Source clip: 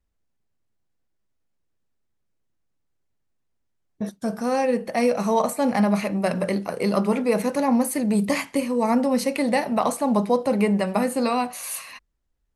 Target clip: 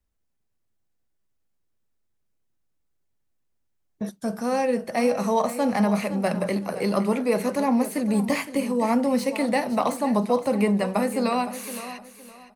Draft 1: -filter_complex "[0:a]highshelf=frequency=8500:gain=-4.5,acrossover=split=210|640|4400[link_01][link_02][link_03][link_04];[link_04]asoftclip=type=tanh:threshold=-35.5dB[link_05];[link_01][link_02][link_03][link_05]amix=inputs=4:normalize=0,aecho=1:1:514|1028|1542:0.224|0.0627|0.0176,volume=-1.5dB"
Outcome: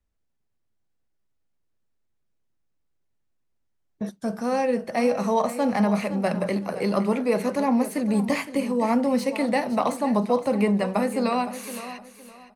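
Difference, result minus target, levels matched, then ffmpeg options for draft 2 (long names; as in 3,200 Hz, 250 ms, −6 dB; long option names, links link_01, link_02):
8,000 Hz band −3.0 dB
-filter_complex "[0:a]highshelf=frequency=8500:gain=5.5,acrossover=split=210|640|4400[link_01][link_02][link_03][link_04];[link_04]asoftclip=type=tanh:threshold=-35.5dB[link_05];[link_01][link_02][link_03][link_05]amix=inputs=4:normalize=0,aecho=1:1:514|1028|1542:0.224|0.0627|0.0176,volume=-1.5dB"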